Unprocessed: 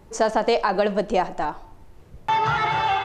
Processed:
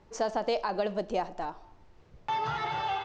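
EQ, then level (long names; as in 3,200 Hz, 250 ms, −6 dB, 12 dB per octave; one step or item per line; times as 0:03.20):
low-pass filter 6,300 Hz 24 dB per octave
dynamic equaliser 1,700 Hz, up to −6 dB, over −37 dBFS, Q 0.77
low-shelf EQ 390 Hz −5 dB
−6.0 dB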